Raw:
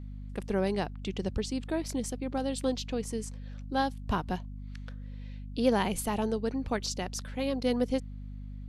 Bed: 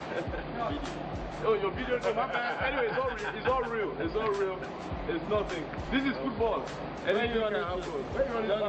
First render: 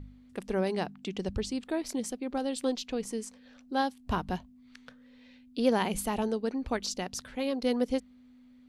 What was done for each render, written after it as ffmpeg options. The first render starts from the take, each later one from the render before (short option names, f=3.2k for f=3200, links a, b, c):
-af "bandreject=f=50:t=h:w=4,bandreject=f=100:t=h:w=4,bandreject=f=150:t=h:w=4,bandreject=f=200:t=h:w=4"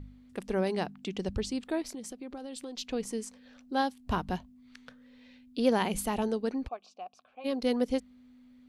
-filter_complex "[0:a]asplit=3[a][b][c];[a]afade=t=out:st=1.82:d=0.02[d];[b]acompressor=threshold=-38dB:ratio=5:attack=3.2:release=140:knee=1:detection=peak,afade=t=in:st=1.82:d=0.02,afade=t=out:st=2.77:d=0.02[e];[c]afade=t=in:st=2.77:d=0.02[f];[d][e][f]amix=inputs=3:normalize=0,asplit=3[g][h][i];[g]afade=t=out:st=6.67:d=0.02[j];[h]asplit=3[k][l][m];[k]bandpass=f=730:t=q:w=8,volume=0dB[n];[l]bandpass=f=1.09k:t=q:w=8,volume=-6dB[o];[m]bandpass=f=2.44k:t=q:w=8,volume=-9dB[p];[n][o][p]amix=inputs=3:normalize=0,afade=t=in:st=6.67:d=0.02,afade=t=out:st=7.44:d=0.02[q];[i]afade=t=in:st=7.44:d=0.02[r];[j][q][r]amix=inputs=3:normalize=0"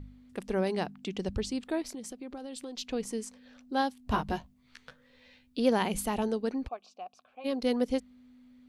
-filter_complex "[0:a]asettb=1/sr,asplit=3[a][b][c];[a]atrim=end=4.124[d];[b]atrim=start=4.12:end=5.59,asetpts=PTS-STARTPTS,afade=t=in:d=0.004:c=qsin,afade=t=out:st=1.466:d=0.004:c=qsin,asplit=2[e][f];[f]adelay=14,volume=-3dB[g];[e][g]amix=inputs=2:normalize=0,atrim=end_sample=64827[h];[c]atrim=start=5.586[i];[d][h]acrossfade=d=0.004:c1=hsin:c2=qsin[j];[j][i]acrossfade=d=0.004:c1=qsin:c2=hsin"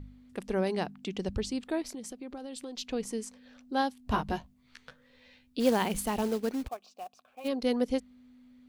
-filter_complex "[0:a]asplit=3[a][b][c];[a]afade=t=out:st=5.59:d=0.02[d];[b]acrusher=bits=4:mode=log:mix=0:aa=0.000001,afade=t=in:st=5.59:d=0.02,afade=t=out:st=7.47:d=0.02[e];[c]afade=t=in:st=7.47:d=0.02[f];[d][e][f]amix=inputs=3:normalize=0"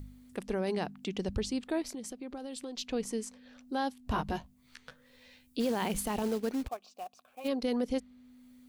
-filter_complex "[0:a]acrossover=split=7000[a][b];[b]acompressor=mode=upward:threshold=-59dB:ratio=2.5[c];[a][c]amix=inputs=2:normalize=0,alimiter=limit=-22dB:level=0:latency=1:release=15"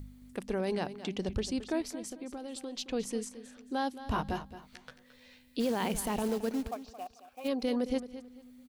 -af "aecho=1:1:220|440|660:0.211|0.0571|0.0154"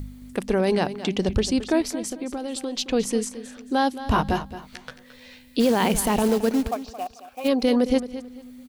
-af "volume=11dB"